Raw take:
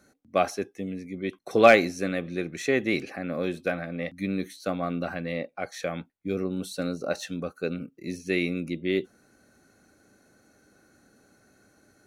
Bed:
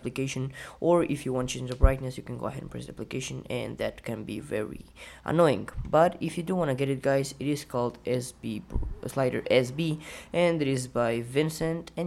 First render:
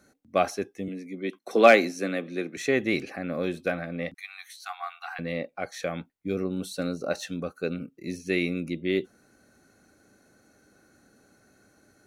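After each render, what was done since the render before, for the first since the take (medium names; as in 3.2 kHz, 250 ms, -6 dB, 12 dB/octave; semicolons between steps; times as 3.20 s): 0.88–2.57 s: steep high-pass 190 Hz; 4.14–5.19 s: brick-wall FIR high-pass 700 Hz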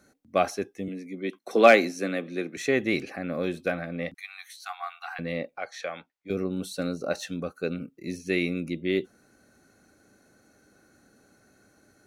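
5.58–6.30 s: three-band isolator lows -16 dB, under 490 Hz, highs -13 dB, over 6.6 kHz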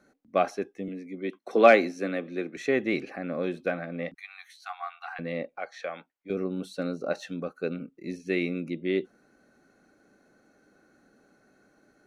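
low-pass 2.3 kHz 6 dB/octave; peaking EQ 85 Hz -13.5 dB 1 oct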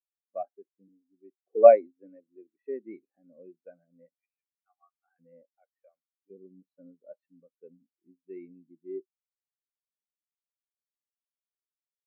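spectral contrast expander 2.5:1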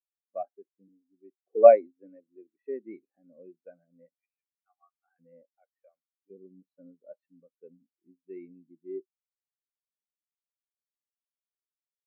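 no audible change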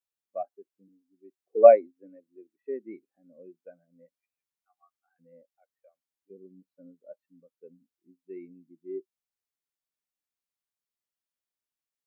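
trim +1 dB; peak limiter -3 dBFS, peak gain reduction 1.5 dB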